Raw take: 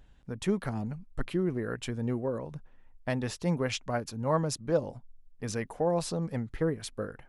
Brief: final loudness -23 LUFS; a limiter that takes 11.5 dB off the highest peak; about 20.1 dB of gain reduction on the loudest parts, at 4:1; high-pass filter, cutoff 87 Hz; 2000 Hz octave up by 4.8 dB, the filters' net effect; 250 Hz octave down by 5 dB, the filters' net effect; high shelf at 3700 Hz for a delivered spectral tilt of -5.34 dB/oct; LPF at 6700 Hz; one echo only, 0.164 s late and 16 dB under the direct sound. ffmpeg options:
-af "highpass=87,lowpass=6.7k,equalizer=f=250:t=o:g=-7.5,equalizer=f=2k:t=o:g=7.5,highshelf=f=3.7k:g=-5,acompressor=threshold=-48dB:ratio=4,alimiter=level_in=18dB:limit=-24dB:level=0:latency=1,volume=-18dB,aecho=1:1:164:0.158,volume=29.5dB"

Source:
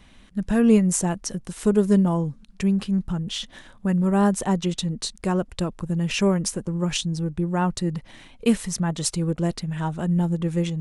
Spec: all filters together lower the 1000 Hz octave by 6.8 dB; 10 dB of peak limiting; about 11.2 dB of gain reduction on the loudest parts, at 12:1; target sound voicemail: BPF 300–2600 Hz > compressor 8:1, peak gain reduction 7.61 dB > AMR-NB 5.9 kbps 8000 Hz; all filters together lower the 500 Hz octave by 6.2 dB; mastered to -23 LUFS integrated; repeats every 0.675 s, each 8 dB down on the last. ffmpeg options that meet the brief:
-af "equalizer=f=500:t=o:g=-5.5,equalizer=f=1k:t=o:g=-6.5,acompressor=threshold=-26dB:ratio=12,alimiter=level_in=1.5dB:limit=-24dB:level=0:latency=1,volume=-1.5dB,highpass=300,lowpass=2.6k,aecho=1:1:675|1350|2025|2700|3375:0.398|0.159|0.0637|0.0255|0.0102,acompressor=threshold=-40dB:ratio=8,volume=23dB" -ar 8000 -c:a libopencore_amrnb -b:a 5900

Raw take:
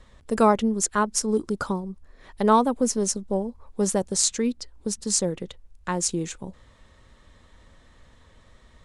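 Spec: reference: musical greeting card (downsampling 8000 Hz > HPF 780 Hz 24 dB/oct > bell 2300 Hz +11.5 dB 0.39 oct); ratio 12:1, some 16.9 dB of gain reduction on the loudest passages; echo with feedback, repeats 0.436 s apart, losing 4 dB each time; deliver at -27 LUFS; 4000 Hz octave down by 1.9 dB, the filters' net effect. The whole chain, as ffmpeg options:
-af "equalizer=f=4k:t=o:g=-3.5,acompressor=threshold=-30dB:ratio=12,aecho=1:1:436|872|1308|1744|2180|2616|3052|3488|3924:0.631|0.398|0.25|0.158|0.0994|0.0626|0.0394|0.0249|0.0157,aresample=8000,aresample=44100,highpass=f=780:w=0.5412,highpass=f=780:w=1.3066,equalizer=f=2.3k:t=o:w=0.39:g=11.5,volume=16dB"

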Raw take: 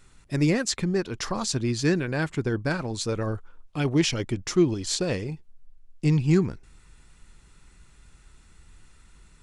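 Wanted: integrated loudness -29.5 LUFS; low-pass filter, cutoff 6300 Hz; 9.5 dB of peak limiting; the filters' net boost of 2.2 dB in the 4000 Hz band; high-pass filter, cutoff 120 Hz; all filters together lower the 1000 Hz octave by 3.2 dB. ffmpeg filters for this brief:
-af "highpass=120,lowpass=6.3k,equalizer=f=1k:t=o:g=-4.5,equalizer=f=4k:t=o:g=4,volume=1dB,alimiter=limit=-19dB:level=0:latency=1"

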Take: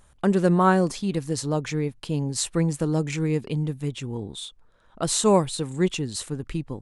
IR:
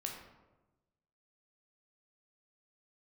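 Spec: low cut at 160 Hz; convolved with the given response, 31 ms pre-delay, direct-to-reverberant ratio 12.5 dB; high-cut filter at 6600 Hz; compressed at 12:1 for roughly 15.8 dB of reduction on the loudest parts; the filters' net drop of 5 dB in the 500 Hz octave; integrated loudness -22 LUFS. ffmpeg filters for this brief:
-filter_complex "[0:a]highpass=160,lowpass=6.6k,equalizer=f=500:t=o:g=-6.5,acompressor=threshold=-33dB:ratio=12,asplit=2[a][b];[1:a]atrim=start_sample=2205,adelay=31[c];[b][c]afir=irnorm=-1:irlink=0,volume=-12dB[d];[a][d]amix=inputs=2:normalize=0,volume=15.5dB"

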